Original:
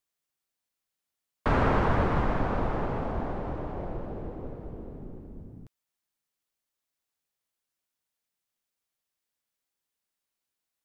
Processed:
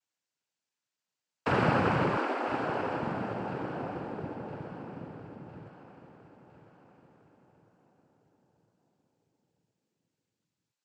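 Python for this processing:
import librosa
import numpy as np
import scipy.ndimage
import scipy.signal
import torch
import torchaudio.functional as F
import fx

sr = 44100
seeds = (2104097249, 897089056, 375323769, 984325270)

p1 = fx.noise_vocoder(x, sr, seeds[0], bands=8)
p2 = fx.steep_highpass(p1, sr, hz=250.0, slope=72, at=(2.17, 3.03))
y = p2 + fx.echo_feedback(p2, sr, ms=1007, feedback_pct=46, wet_db=-13, dry=0)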